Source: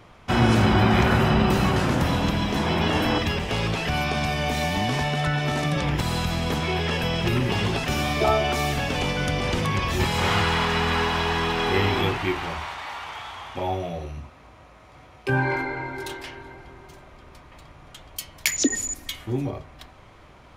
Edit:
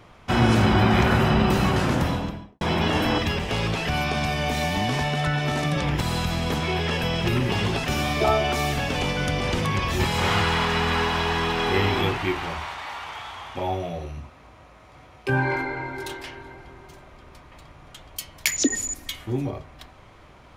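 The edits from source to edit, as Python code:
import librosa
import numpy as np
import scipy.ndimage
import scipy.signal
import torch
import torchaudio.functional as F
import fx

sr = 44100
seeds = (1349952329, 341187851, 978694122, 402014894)

y = fx.studio_fade_out(x, sr, start_s=1.93, length_s=0.68)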